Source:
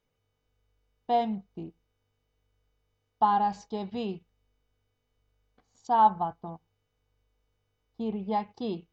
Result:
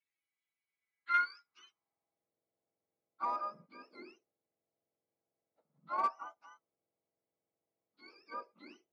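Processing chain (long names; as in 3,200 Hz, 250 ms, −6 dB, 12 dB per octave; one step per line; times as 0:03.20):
frequency axis turned over on the octave scale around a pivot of 1,000 Hz
harmonic generator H 4 −22 dB, 6 −12 dB, 8 −16 dB, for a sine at −11.5 dBFS
band-pass filter sweep 2,800 Hz → 580 Hz, 0:00.65–0:02.33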